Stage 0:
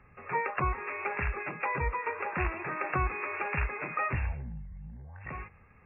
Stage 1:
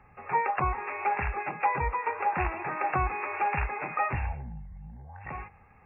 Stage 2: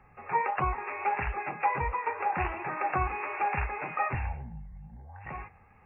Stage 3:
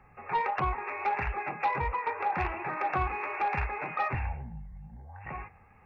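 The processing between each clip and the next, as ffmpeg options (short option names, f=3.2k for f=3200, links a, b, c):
-af "equalizer=f=810:w=3.9:g=12"
-af "flanger=delay=5:depth=6.3:regen=-70:speed=1.5:shape=triangular,volume=3dB"
-af "aeval=exprs='0.188*sin(PI/2*1.41*val(0)/0.188)':c=same,volume=-6.5dB"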